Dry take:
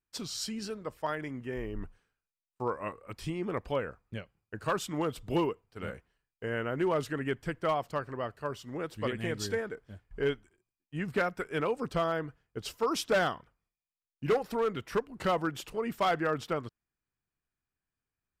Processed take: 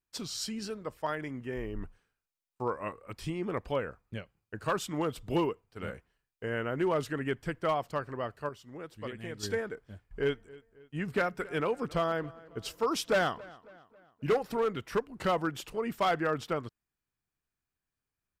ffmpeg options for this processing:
ffmpeg -i in.wav -filter_complex "[0:a]asplit=3[link_01][link_02][link_03];[link_01]afade=type=out:start_time=10.33:duration=0.02[link_04];[link_02]asplit=2[link_05][link_06];[link_06]adelay=272,lowpass=frequency=3700:poles=1,volume=-21dB,asplit=2[link_07][link_08];[link_08]adelay=272,lowpass=frequency=3700:poles=1,volume=0.5,asplit=2[link_09][link_10];[link_10]adelay=272,lowpass=frequency=3700:poles=1,volume=0.5,asplit=2[link_11][link_12];[link_12]adelay=272,lowpass=frequency=3700:poles=1,volume=0.5[link_13];[link_05][link_07][link_09][link_11][link_13]amix=inputs=5:normalize=0,afade=type=in:start_time=10.33:duration=0.02,afade=type=out:start_time=14.7:duration=0.02[link_14];[link_03]afade=type=in:start_time=14.7:duration=0.02[link_15];[link_04][link_14][link_15]amix=inputs=3:normalize=0,asplit=3[link_16][link_17][link_18];[link_16]atrim=end=8.492[link_19];[link_17]atrim=start=8.488:end=9.432,asetpts=PTS-STARTPTS,volume=-7dB[link_20];[link_18]atrim=start=9.428[link_21];[link_19][link_20]acrossfade=duration=0.004:curve1=hsin:curve2=hsin[link_22];[link_22][link_21]acrossfade=duration=0.004:curve1=hsin:curve2=hsin" out.wav

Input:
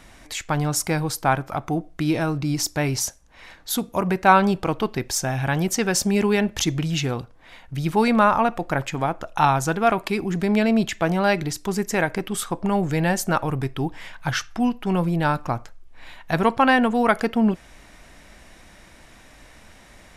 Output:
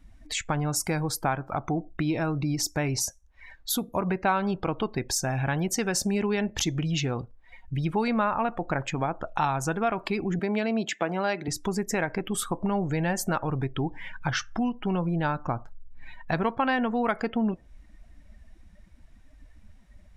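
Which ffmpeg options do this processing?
ffmpeg -i in.wav -filter_complex "[0:a]asettb=1/sr,asplit=3[link_01][link_02][link_03];[link_01]atrim=end=10.394[link_04];[link_02]atrim=start=10.39:end=11.48,asetpts=PTS-STARTPTS,afade=type=in:duration=0.004:curve=qsin,afade=type=out:start_time=1.086:duration=0.004:curve=qsin,highpass=230[link_05];[link_03]atrim=start=11.476[link_06];[link_04][link_05]acrossfade=duration=0.004:curve1=hsin:curve2=qsin[link_07];[link_07][link_06]acrossfade=duration=0.004:curve1=qsin:curve2=hsin,afftdn=noise_reduction=22:noise_floor=-39,acompressor=threshold=-29dB:ratio=2.5,volume=2dB" out.wav

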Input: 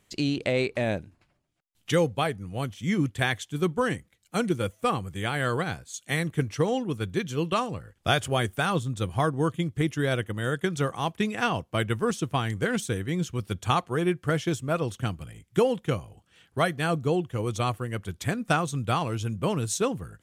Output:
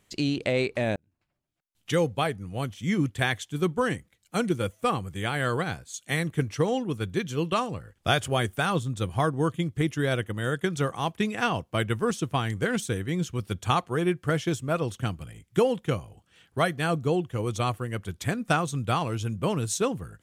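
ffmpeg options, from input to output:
ffmpeg -i in.wav -filter_complex "[0:a]asplit=2[link_01][link_02];[link_01]atrim=end=0.96,asetpts=PTS-STARTPTS,afade=type=out:start_time=0.956:duration=0.004:curve=hsin[link_03];[link_02]atrim=start=0.96,asetpts=PTS-STARTPTS,afade=type=in:duration=1.18[link_04];[link_03][link_04]concat=n=2:v=0:a=1" out.wav

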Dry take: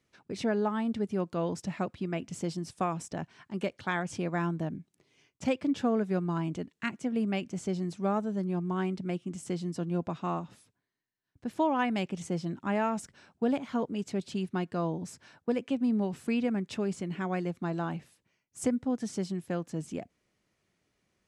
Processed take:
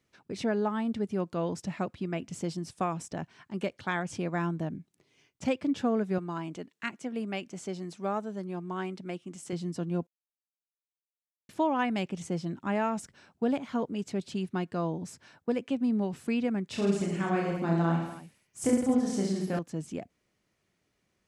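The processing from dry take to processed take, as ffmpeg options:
ffmpeg -i in.wav -filter_complex "[0:a]asettb=1/sr,asplit=3[link_01][link_02][link_03];[link_01]atrim=end=6.184[link_04];[link_02]atrim=start=6.18:end=9.53,asetpts=PTS-STARTPTS,afade=type=in:duration=0.004:curve=qsin,afade=type=out:start_time=3.346:duration=0.004:curve=qsin,highpass=frequency=350:poles=1[link_05];[link_03]atrim=start=9.526[link_06];[link_04][link_05]acrossfade=duration=0.004:curve1=hsin:curve2=qsin[link_07];[link_07][link_06]acrossfade=duration=0.004:curve1=qsin:curve2=hsin,asettb=1/sr,asplit=3[link_08][link_09][link_10];[link_08]atrim=end=16.704[link_11];[link_09]atrim=start=16.7:end=19.59,asetpts=PTS-STARTPTS,afade=type=in:duration=0.004:curve=qsin,afade=type=out:start_time=2.886:duration=0.004:curve=qsin,aecho=1:1:30|66|109.2|161|223.2|297.9:0.794|0.631|0.501|0.398|0.316|0.251,atrim=end_sample=127449[link_12];[link_10]atrim=start=19.586[link_13];[link_11][link_12]acrossfade=duration=0.004:curve1=hsin:curve2=qsin[link_14];[link_14][link_13]acrossfade=duration=0.004:curve1=qsin:curve2=hsin,asplit=3[link_15][link_16][link_17];[link_15]atrim=end=10.07,asetpts=PTS-STARTPTS,afade=type=out:start_time=10.066:duration=0.004:curve=hsin[link_18];[link_16]atrim=start=10.07:end=11.49,asetpts=PTS-STARTPTS,volume=0[link_19];[link_17]atrim=start=11.49,asetpts=PTS-STARTPTS,afade=type=in:duration=0.004:curve=hsin[link_20];[link_18][link_19][link_20]concat=n=3:v=0:a=1" out.wav

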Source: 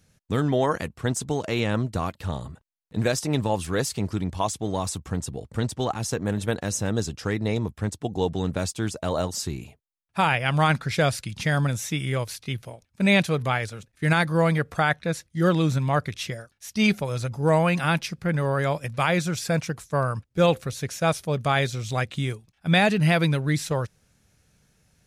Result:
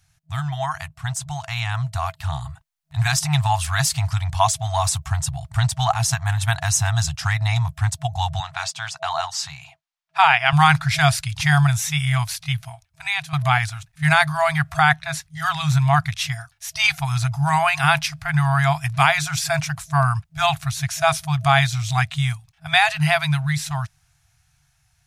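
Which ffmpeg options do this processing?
ffmpeg -i in.wav -filter_complex "[0:a]asettb=1/sr,asplit=3[link_01][link_02][link_03];[link_01]atrim=end=8.404[link_04];[link_02]atrim=start=8.4:end=10.53,asetpts=PTS-STARTPTS,afade=type=in:duration=0.004:curve=qsin,afade=type=out:start_time=2.126:duration=0.004:curve=qsin,acrossover=split=210 6500:gain=0.0708 1 0.158[link_05][link_06][link_07];[link_05][link_06][link_07]amix=inputs=3:normalize=0[link_08];[link_03]atrim=start=10.526[link_09];[link_04][link_08]acrossfade=duration=0.004:curve1=hsin:curve2=qsin[link_10];[link_10][link_09]acrossfade=duration=0.004:curve1=qsin:curve2=hsin,asplit=2[link_11][link_12];[link_11]atrim=end=13.33,asetpts=PTS-STARTPTS,afade=type=out:start_time=12.5:duration=0.83:silence=0.188365[link_13];[link_12]atrim=start=13.33,asetpts=PTS-STARTPTS,afade=type=in:duration=0.004:curve=hsin:silence=0.188365[link_14];[link_13][link_14]concat=n=2:v=0:a=1,afftfilt=real='re*(1-between(b*sr/4096,160,650))':imag='im*(1-between(b*sr/4096,160,650))':win_size=4096:overlap=0.75,dynaudnorm=framelen=720:gausssize=7:maxgain=9dB,volume=1dB" out.wav

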